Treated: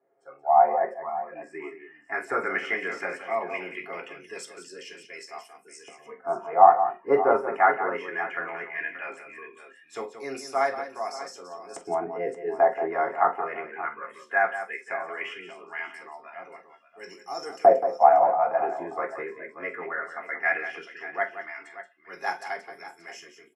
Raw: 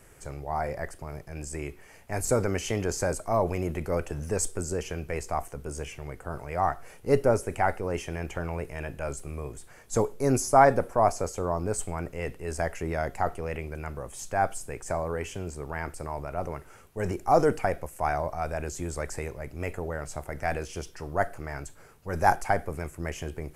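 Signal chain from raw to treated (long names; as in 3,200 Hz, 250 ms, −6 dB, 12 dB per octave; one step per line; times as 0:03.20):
noise reduction from a noise print of the clip's start 20 dB
auto-filter band-pass saw up 0.17 Hz 620–6,500 Hz
multi-tap delay 45/178/581 ms −13.5/−10.5/−14 dB
convolution reverb RT60 0.20 s, pre-delay 3 ms, DRR 0 dB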